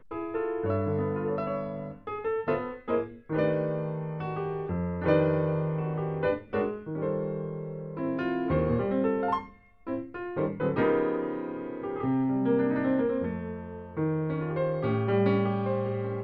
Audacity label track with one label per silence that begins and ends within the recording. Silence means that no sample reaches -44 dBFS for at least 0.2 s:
9.530000	9.870000	silence